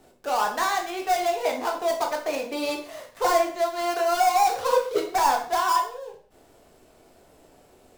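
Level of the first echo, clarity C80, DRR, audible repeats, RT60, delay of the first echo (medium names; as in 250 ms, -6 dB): no echo, 12.5 dB, 1.0 dB, no echo, 0.45 s, no echo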